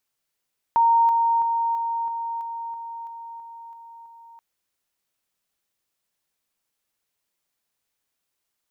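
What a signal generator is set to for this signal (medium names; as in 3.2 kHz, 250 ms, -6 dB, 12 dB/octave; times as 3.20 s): level ladder 925 Hz -14 dBFS, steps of -3 dB, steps 11, 0.33 s 0.00 s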